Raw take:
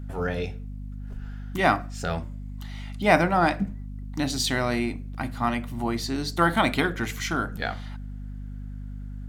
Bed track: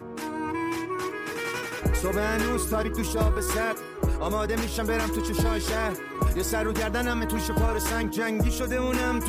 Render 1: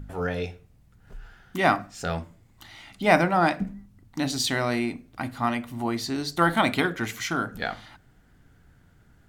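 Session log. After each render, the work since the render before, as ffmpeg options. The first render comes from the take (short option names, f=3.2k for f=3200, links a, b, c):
-af "bandreject=f=50:t=h:w=4,bandreject=f=100:t=h:w=4,bandreject=f=150:t=h:w=4,bandreject=f=200:t=h:w=4,bandreject=f=250:t=h:w=4"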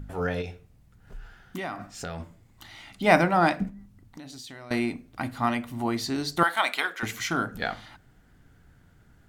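-filter_complex "[0:a]asettb=1/sr,asplit=3[a][b][c];[a]atrim=end=0.414[d];[b]atrim=start=0.41:end=2.2,asetpts=PTS-STARTPTS,afade=t=in:d=0.004:c=qsin,afade=t=out:st=1.786:d=0.004:c=qsin,acompressor=threshold=-30dB:ratio=6:attack=3.2:release=140:knee=1:detection=peak[e];[c]atrim=start=2.196[f];[d][e]acrossfade=d=0.004:c1=hsin:c2=qsin[g];[g][f]acrossfade=d=0.004:c1=qsin:c2=hsin,asettb=1/sr,asplit=3[h][i][j];[h]atrim=end=3.694[k];[i]atrim=start=3.69:end=4.71,asetpts=PTS-STARTPTS,afade=t=in:d=0.004:c=qsin,afade=t=out:st=1.016:d=0.004:c=qsin,acompressor=threshold=-40dB:ratio=8:attack=3.2:release=140:knee=1:detection=peak[l];[j]atrim=start=4.706[m];[k][l]acrossfade=d=0.004:c1=hsin:c2=qsin[n];[n][m]acrossfade=d=0.004:c1=qsin:c2=hsin,asettb=1/sr,asplit=3[o][p][q];[o]atrim=end=6.434[r];[p]atrim=start=6.43:end=7.03,asetpts=PTS-STARTPTS,afade=t=in:d=0.004:c=qsin,afade=t=out:st=0.596:d=0.004:c=qsin,highpass=820[s];[q]atrim=start=7.026[t];[r][s]acrossfade=d=0.004:c1=hsin:c2=qsin[u];[u][t]acrossfade=d=0.004:c1=qsin:c2=hsin"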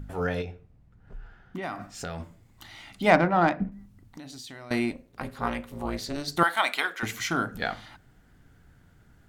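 -filter_complex "[0:a]asplit=3[a][b][c];[a]afade=t=out:st=0.43:d=0.02[d];[b]lowpass=f=1.4k:p=1,afade=t=in:st=0.43:d=0.02,afade=t=out:st=1.62:d=0.02[e];[c]afade=t=in:st=1.62:d=0.02[f];[d][e][f]amix=inputs=3:normalize=0,asettb=1/sr,asplit=3[g][h][i];[g]atrim=end=3.104[j];[h]atrim=start=3.1:end=3.72,asetpts=PTS-STARTPTS,afade=t=in:d=0.004:c=qsin,afade=t=out:st=0.616:d=0.004:c=qsin,adynamicsmooth=sensitivity=0.5:basefreq=2k[k];[i]atrim=start=3.716[l];[j][k]acrossfade=d=0.004:c1=hsin:c2=qsin[m];[m][l]acrossfade=d=0.004:c1=qsin:c2=hsin,asettb=1/sr,asplit=3[n][o][p];[n]atrim=end=4.914[q];[o]atrim=start=4.91:end=6.28,asetpts=PTS-STARTPTS,afade=t=in:d=0.004:c=qsin,afade=t=out:st=1.366:d=0.004:c=qsin,tremolo=f=290:d=0.947[r];[p]atrim=start=6.276[s];[q][r]acrossfade=d=0.004:c1=hsin:c2=qsin[t];[t][s]acrossfade=d=0.004:c1=qsin:c2=hsin"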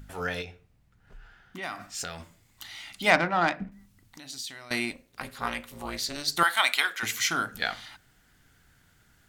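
-af "tiltshelf=f=1.3k:g=-7.5"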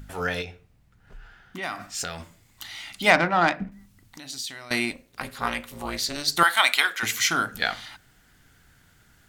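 -af "volume=4dB,alimiter=limit=-2dB:level=0:latency=1"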